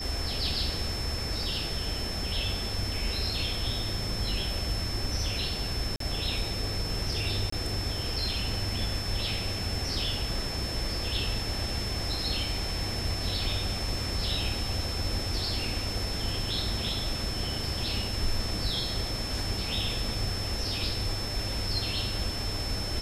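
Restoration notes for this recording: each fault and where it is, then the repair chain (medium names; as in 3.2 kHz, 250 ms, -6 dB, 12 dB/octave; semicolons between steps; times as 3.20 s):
whine 5.3 kHz -35 dBFS
5.96–6.00 s: dropout 43 ms
7.50–7.52 s: dropout 24 ms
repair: band-stop 5.3 kHz, Q 30; interpolate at 5.96 s, 43 ms; interpolate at 7.50 s, 24 ms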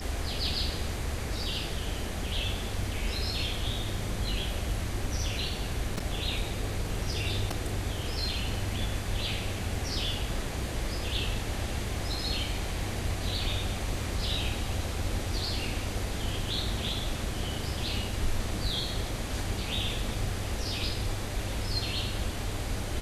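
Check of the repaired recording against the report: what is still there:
nothing left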